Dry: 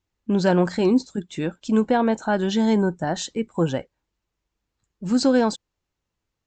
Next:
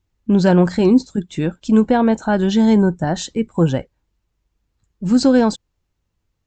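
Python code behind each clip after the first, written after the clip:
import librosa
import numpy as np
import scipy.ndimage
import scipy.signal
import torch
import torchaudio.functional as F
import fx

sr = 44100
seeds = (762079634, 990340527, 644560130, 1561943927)

y = fx.low_shelf(x, sr, hz=180.0, db=10.5)
y = y * 10.0 ** (2.5 / 20.0)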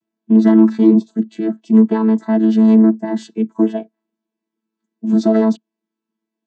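y = fx.chord_vocoder(x, sr, chord='bare fifth', root=57)
y = y * 10.0 ** (3.0 / 20.0)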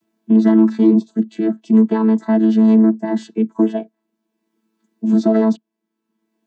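y = fx.band_squash(x, sr, depth_pct=40)
y = y * 10.0 ** (-1.0 / 20.0)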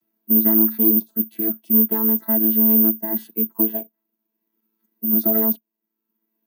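y = (np.kron(scipy.signal.resample_poly(x, 1, 3), np.eye(3)[0]) * 3)[:len(x)]
y = y * 10.0 ** (-9.0 / 20.0)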